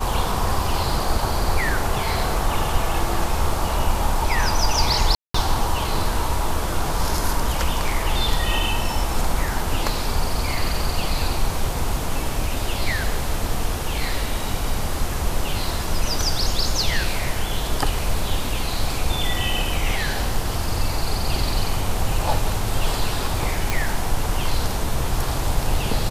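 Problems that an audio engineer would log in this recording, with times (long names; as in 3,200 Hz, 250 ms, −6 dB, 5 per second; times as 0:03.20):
0:05.15–0:05.34: drop-out 194 ms
0:23.70: click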